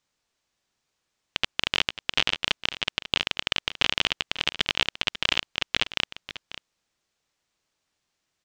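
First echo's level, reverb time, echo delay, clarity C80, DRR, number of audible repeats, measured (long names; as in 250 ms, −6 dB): −14.0 dB, no reverb audible, 543 ms, no reverb audible, no reverb audible, 1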